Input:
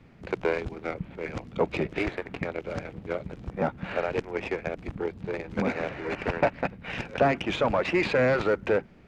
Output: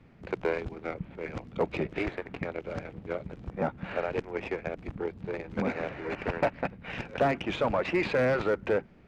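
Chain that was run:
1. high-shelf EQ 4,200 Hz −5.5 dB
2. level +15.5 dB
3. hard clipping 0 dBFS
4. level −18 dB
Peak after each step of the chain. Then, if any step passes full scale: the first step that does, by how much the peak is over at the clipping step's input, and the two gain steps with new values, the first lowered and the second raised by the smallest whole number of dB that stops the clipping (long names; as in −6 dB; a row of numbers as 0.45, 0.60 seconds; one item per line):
−10.5, +5.0, 0.0, −18.0 dBFS
step 2, 5.0 dB
step 2 +10.5 dB, step 4 −13 dB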